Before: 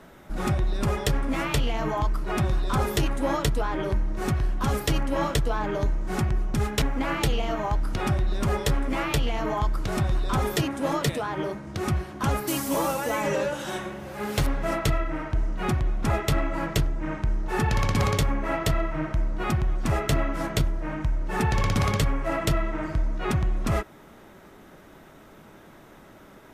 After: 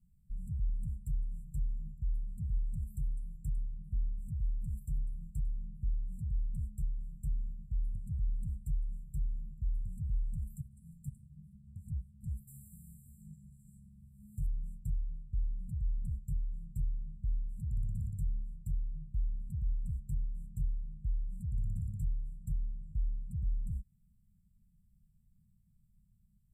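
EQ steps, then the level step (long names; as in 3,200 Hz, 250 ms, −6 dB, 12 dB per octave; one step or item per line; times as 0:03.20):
linear-phase brick-wall band-stop 220–7,200 Hz
guitar amp tone stack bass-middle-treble 10-0-1
high-shelf EQ 8,400 Hz −3 dB
−2.0 dB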